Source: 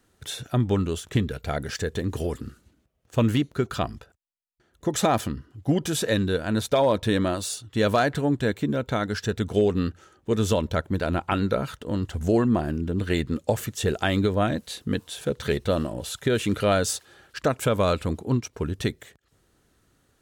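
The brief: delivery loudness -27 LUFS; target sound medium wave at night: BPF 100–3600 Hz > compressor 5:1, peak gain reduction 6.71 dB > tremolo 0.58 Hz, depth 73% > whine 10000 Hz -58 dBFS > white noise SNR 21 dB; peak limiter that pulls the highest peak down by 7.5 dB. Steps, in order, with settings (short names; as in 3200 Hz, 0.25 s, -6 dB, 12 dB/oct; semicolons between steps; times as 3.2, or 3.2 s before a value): limiter -17.5 dBFS; BPF 100–3600 Hz; compressor 5:1, threshold -28 dBFS; tremolo 0.58 Hz, depth 73%; whine 10000 Hz -58 dBFS; white noise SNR 21 dB; gain +10.5 dB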